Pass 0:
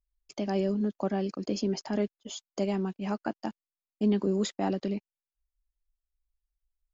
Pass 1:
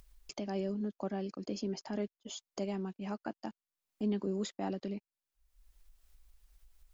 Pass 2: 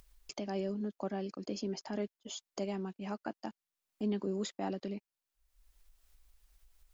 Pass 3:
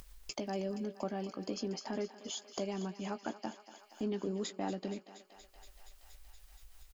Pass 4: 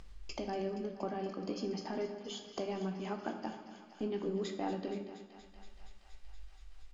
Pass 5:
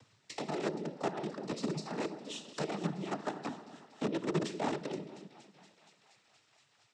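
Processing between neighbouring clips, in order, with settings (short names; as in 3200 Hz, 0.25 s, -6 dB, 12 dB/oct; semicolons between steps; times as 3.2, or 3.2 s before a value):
upward compressor, threshold -30 dBFS; gain -7.5 dB
low shelf 220 Hz -4 dB; gain +1 dB
compressor 1.5:1, threshold -60 dBFS, peak gain reduction 11 dB; doubler 17 ms -11 dB; thinning echo 0.236 s, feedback 83%, high-pass 520 Hz, level -13 dB; gain +9 dB
air absorption 110 m; reverb RT60 1.1 s, pre-delay 3 ms, DRR 5 dB
in parallel at -3 dB: bit-crush 5-bit; on the sum: noise vocoder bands 12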